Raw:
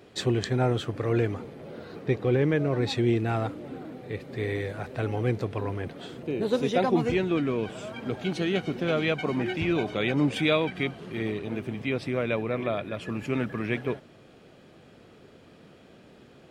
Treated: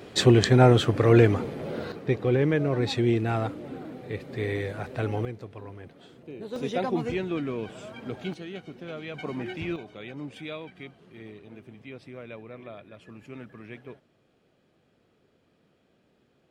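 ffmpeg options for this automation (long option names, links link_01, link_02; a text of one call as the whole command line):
ffmpeg -i in.wav -af "asetnsamples=nb_out_samples=441:pad=0,asendcmd='1.92 volume volume 0.5dB;5.25 volume volume -11dB;6.56 volume volume -4dB;8.34 volume volume -12dB;9.14 volume volume -5.5dB;9.76 volume volume -14dB',volume=8dB" out.wav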